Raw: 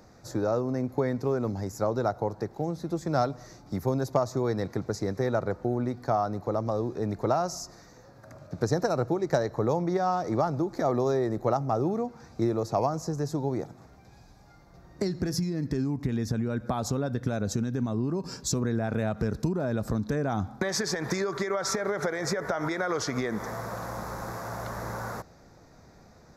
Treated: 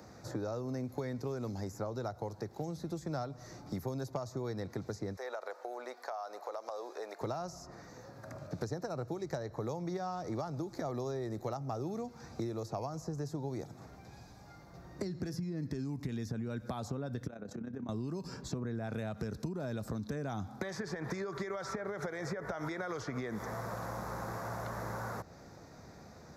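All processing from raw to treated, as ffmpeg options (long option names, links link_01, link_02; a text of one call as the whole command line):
ffmpeg -i in.wav -filter_complex "[0:a]asettb=1/sr,asplit=3[link_01][link_02][link_03];[link_01]atrim=end=5.164[link_04];[link_02]atrim=start=5.16:end=7.21,asetpts=PTS-STARTPTS,afade=type=in:duration=0.004:curve=qsin,afade=type=out:start_time=2.046:duration=0.004:curve=qsin,highpass=frequency=540:width=0.5412,highpass=frequency=540:width=1.3066,acompressor=threshold=-33dB:ratio=3:attack=3.2:release=140:knee=1:detection=peak[link_05];[link_03]atrim=start=7.206[link_06];[link_04][link_05]acrossfade=duration=0.004:curve1=hsin:curve2=qsin[link_07];[link_07][link_06]acrossfade=duration=0.004:curve1=qsin:curve2=hsin,asettb=1/sr,asplit=3[link_08][link_09][link_10];[link_08]atrim=end=17.274[link_11];[link_09]atrim=start=17.27:end=17.89,asetpts=PTS-STARTPTS,afade=type=in:duration=0.004:curve=qsin,afade=type=out:start_time=0.616:duration=0.004:curve=qsin,acrossover=split=150 2500:gain=0.0891 1 0.2[link_12][link_13][link_14];[link_12][link_13][link_14]amix=inputs=3:normalize=0,acompressor=threshold=-37dB:ratio=2.5:attack=3.2:release=140:knee=1:detection=peak,tremolo=f=32:d=0.71[link_15];[link_10]atrim=start=17.886[link_16];[link_11][link_15]acrossfade=duration=0.004:curve1=hsin:curve2=qsin[link_17];[link_17][link_16]acrossfade=duration=0.004:curve1=qsin:curve2=hsin,highpass=62,acrossover=split=110|2700[link_18][link_19][link_20];[link_18]acompressor=threshold=-49dB:ratio=4[link_21];[link_19]acompressor=threshold=-40dB:ratio=4[link_22];[link_20]acompressor=threshold=-57dB:ratio=4[link_23];[link_21][link_22][link_23]amix=inputs=3:normalize=0,volume=1.5dB" out.wav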